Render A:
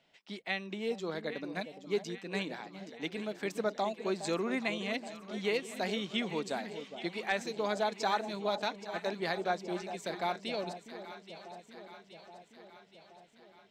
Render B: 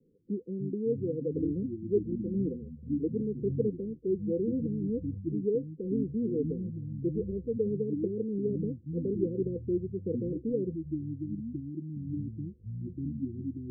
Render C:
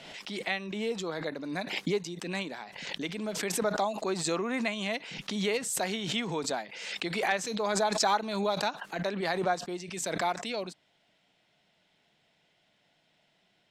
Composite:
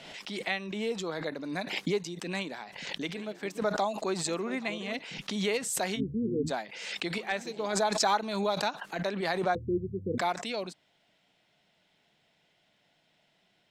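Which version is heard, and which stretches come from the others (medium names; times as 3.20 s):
C
3.14–3.61 s: from A
4.27–4.99 s: from A
5.98–6.49 s: from B, crossfade 0.06 s
7.18–7.73 s: from A
9.55–10.18 s: from B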